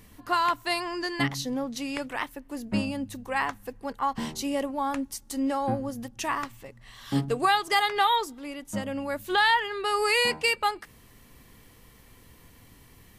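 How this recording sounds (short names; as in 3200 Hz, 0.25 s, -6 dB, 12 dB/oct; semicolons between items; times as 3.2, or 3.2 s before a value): noise floor -55 dBFS; spectral tilt -3.5 dB/oct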